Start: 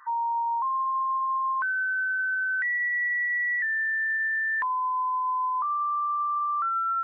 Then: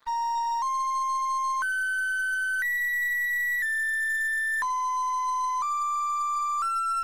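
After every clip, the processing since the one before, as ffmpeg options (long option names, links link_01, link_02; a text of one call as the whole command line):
ffmpeg -i in.wav -af "bass=frequency=250:gain=-4,treble=frequency=4000:gain=2,aeval=exprs='sgn(val(0))*max(abs(val(0))-0.00335,0)':channel_layout=same,aeval=exprs='0.075*(cos(1*acos(clip(val(0)/0.075,-1,1)))-cos(1*PI/2))+0.00376*(cos(6*acos(clip(val(0)/0.075,-1,1)))-cos(6*PI/2))+0.00841*(cos(8*acos(clip(val(0)/0.075,-1,1)))-cos(8*PI/2))':channel_layout=same" out.wav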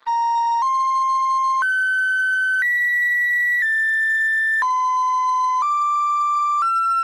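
ffmpeg -i in.wav -filter_complex "[0:a]acrossover=split=220 4800:gain=0.178 1 0.224[link_01][link_02][link_03];[link_01][link_02][link_03]amix=inputs=3:normalize=0,volume=8.5dB" out.wav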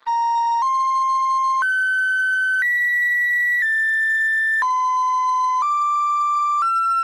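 ffmpeg -i in.wav -af anull out.wav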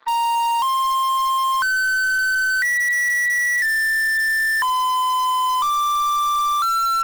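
ffmpeg -i in.wav -filter_complex "[0:a]lowpass=frequency=3100:poles=1,asplit=2[link_01][link_02];[link_02]aeval=exprs='(mod(7.5*val(0)+1,2)-1)/7.5':channel_layout=same,volume=-11.5dB[link_03];[link_01][link_03]amix=inputs=2:normalize=0" out.wav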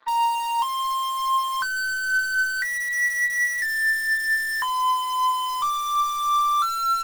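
ffmpeg -i in.wav -af "flanger=delay=9.4:depth=1.7:regen=42:speed=0.54:shape=sinusoidal" out.wav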